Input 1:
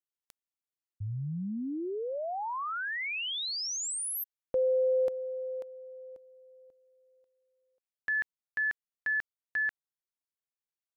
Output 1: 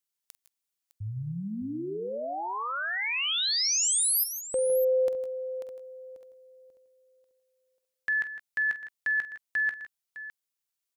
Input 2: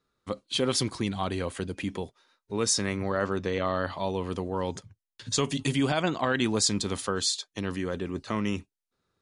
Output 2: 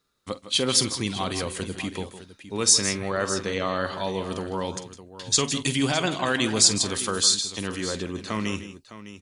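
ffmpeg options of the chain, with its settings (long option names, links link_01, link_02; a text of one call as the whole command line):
ffmpeg -i in.wav -filter_complex "[0:a]highshelf=frequency=2600:gain=9.5,asplit=2[link_01][link_02];[link_02]aecho=0:1:47|157|173|608:0.188|0.237|0.112|0.2[link_03];[link_01][link_03]amix=inputs=2:normalize=0" out.wav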